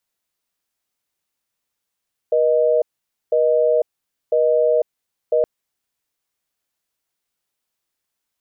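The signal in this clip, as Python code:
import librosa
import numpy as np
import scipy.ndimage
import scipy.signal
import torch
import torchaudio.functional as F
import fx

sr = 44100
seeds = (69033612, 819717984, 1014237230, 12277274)

y = fx.call_progress(sr, length_s=3.12, kind='busy tone', level_db=-16.0)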